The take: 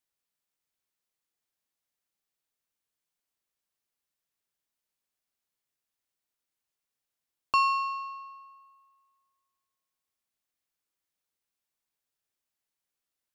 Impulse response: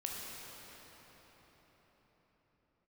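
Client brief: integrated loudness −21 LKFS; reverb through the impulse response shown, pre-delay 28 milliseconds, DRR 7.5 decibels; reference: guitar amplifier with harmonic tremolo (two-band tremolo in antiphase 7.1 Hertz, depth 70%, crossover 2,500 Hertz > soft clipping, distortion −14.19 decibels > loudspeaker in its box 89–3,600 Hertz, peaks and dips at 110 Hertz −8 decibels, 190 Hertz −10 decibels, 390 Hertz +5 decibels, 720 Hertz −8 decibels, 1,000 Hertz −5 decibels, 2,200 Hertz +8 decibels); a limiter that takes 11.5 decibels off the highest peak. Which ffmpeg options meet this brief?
-filter_complex "[0:a]alimiter=level_in=2dB:limit=-24dB:level=0:latency=1,volume=-2dB,asplit=2[link_01][link_02];[1:a]atrim=start_sample=2205,adelay=28[link_03];[link_02][link_03]afir=irnorm=-1:irlink=0,volume=-9dB[link_04];[link_01][link_04]amix=inputs=2:normalize=0,acrossover=split=2500[link_05][link_06];[link_05]aeval=exprs='val(0)*(1-0.7/2+0.7/2*cos(2*PI*7.1*n/s))':channel_layout=same[link_07];[link_06]aeval=exprs='val(0)*(1-0.7/2-0.7/2*cos(2*PI*7.1*n/s))':channel_layout=same[link_08];[link_07][link_08]amix=inputs=2:normalize=0,asoftclip=threshold=-34.5dB,highpass=89,equalizer=frequency=110:width_type=q:width=4:gain=-8,equalizer=frequency=190:width_type=q:width=4:gain=-10,equalizer=frequency=390:width_type=q:width=4:gain=5,equalizer=frequency=720:width_type=q:width=4:gain=-8,equalizer=frequency=1000:width_type=q:width=4:gain=-5,equalizer=frequency=2200:width_type=q:width=4:gain=8,lowpass=frequency=3600:width=0.5412,lowpass=frequency=3600:width=1.3066,volume=23.5dB"

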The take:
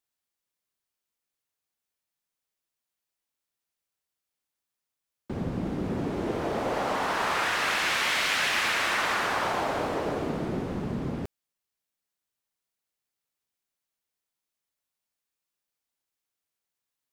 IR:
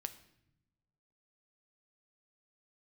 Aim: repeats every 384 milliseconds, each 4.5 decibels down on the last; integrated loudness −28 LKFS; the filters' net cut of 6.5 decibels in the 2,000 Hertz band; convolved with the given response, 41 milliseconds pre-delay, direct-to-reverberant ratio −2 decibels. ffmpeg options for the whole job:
-filter_complex "[0:a]equalizer=frequency=2000:width_type=o:gain=-8.5,aecho=1:1:384|768|1152|1536|1920|2304|2688|3072|3456:0.596|0.357|0.214|0.129|0.0772|0.0463|0.0278|0.0167|0.01,asplit=2[link_01][link_02];[1:a]atrim=start_sample=2205,adelay=41[link_03];[link_02][link_03]afir=irnorm=-1:irlink=0,volume=4.5dB[link_04];[link_01][link_04]amix=inputs=2:normalize=0,volume=-3.5dB"

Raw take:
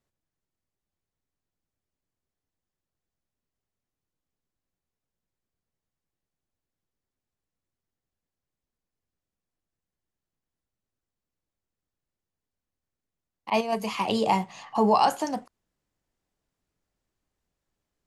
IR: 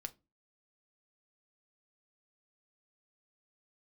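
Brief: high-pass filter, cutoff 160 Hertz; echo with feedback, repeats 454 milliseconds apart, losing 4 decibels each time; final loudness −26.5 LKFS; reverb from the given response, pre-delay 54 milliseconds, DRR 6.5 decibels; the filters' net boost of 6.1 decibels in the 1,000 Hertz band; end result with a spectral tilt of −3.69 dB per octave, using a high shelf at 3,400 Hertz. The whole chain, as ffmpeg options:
-filter_complex "[0:a]highpass=160,equalizer=frequency=1000:width_type=o:gain=8,highshelf=frequency=3400:gain=-7,aecho=1:1:454|908|1362|1816|2270|2724|3178|3632|4086:0.631|0.398|0.25|0.158|0.0994|0.0626|0.0394|0.0249|0.0157,asplit=2[link_01][link_02];[1:a]atrim=start_sample=2205,adelay=54[link_03];[link_02][link_03]afir=irnorm=-1:irlink=0,volume=-3dB[link_04];[link_01][link_04]amix=inputs=2:normalize=0,volume=-6dB"

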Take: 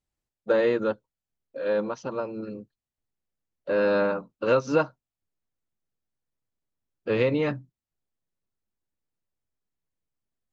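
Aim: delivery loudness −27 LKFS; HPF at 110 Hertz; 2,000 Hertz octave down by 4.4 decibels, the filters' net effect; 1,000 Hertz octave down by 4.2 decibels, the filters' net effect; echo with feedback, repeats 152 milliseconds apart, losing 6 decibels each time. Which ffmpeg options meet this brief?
ffmpeg -i in.wav -af "highpass=110,equalizer=frequency=1000:width_type=o:gain=-4,equalizer=frequency=2000:width_type=o:gain=-4.5,aecho=1:1:152|304|456|608|760|912:0.501|0.251|0.125|0.0626|0.0313|0.0157" out.wav

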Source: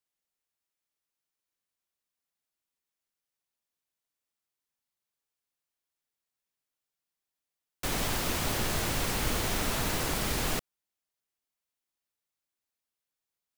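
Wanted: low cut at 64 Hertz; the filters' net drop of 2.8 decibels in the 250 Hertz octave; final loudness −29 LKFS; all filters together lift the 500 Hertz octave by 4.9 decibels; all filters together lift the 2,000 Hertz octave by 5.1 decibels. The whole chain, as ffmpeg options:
ffmpeg -i in.wav -af "highpass=64,equalizer=frequency=250:width_type=o:gain=-6.5,equalizer=frequency=500:width_type=o:gain=7.5,equalizer=frequency=2000:width_type=o:gain=6,volume=-0.5dB" out.wav

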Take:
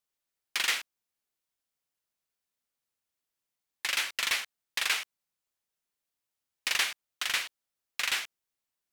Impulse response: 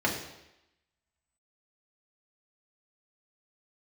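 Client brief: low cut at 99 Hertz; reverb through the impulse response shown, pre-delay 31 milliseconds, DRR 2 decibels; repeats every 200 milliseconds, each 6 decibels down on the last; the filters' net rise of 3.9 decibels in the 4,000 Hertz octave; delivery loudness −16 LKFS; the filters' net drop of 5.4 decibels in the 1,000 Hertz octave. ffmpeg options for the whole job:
-filter_complex "[0:a]highpass=99,equalizer=frequency=1000:width_type=o:gain=-8,equalizer=frequency=4000:width_type=o:gain=5.5,aecho=1:1:200|400|600|800|1000|1200:0.501|0.251|0.125|0.0626|0.0313|0.0157,asplit=2[link_01][link_02];[1:a]atrim=start_sample=2205,adelay=31[link_03];[link_02][link_03]afir=irnorm=-1:irlink=0,volume=-13.5dB[link_04];[link_01][link_04]amix=inputs=2:normalize=0,volume=11dB"

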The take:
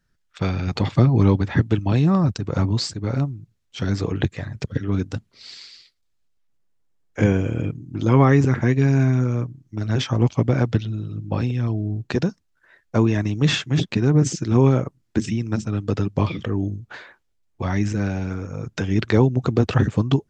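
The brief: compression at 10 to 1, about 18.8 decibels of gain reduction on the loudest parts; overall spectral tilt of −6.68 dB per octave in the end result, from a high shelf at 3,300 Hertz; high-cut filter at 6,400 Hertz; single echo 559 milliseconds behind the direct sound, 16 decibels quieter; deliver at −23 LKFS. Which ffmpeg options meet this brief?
ffmpeg -i in.wav -af "lowpass=6400,highshelf=frequency=3300:gain=-4.5,acompressor=threshold=-30dB:ratio=10,aecho=1:1:559:0.158,volume=12.5dB" out.wav

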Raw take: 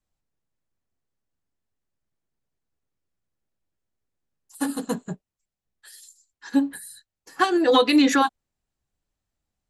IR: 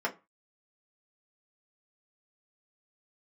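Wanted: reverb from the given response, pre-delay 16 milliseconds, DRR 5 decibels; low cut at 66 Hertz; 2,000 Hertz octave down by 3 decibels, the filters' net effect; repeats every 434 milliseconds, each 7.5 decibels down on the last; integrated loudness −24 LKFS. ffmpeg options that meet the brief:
-filter_complex "[0:a]highpass=66,equalizer=frequency=2000:width_type=o:gain=-4,aecho=1:1:434|868|1302|1736|2170:0.422|0.177|0.0744|0.0312|0.0131,asplit=2[link_01][link_02];[1:a]atrim=start_sample=2205,adelay=16[link_03];[link_02][link_03]afir=irnorm=-1:irlink=0,volume=-13dB[link_04];[link_01][link_04]amix=inputs=2:normalize=0,volume=-2dB"

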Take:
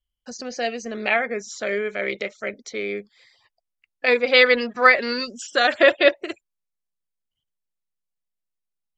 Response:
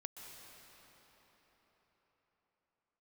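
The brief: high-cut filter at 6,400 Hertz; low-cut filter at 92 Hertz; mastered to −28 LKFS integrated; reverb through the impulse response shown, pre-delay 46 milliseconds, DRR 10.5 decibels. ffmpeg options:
-filter_complex "[0:a]highpass=92,lowpass=6400,asplit=2[link_01][link_02];[1:a]atrim=start_sample=2205,adelay=46[link_03];[link_02][link_03]afir=irnorm=-1:irlink=0,volume=-7dB[link_04];[link_01][link_04]amix=inputs=2:normalize=0,volume=-7.5dB"

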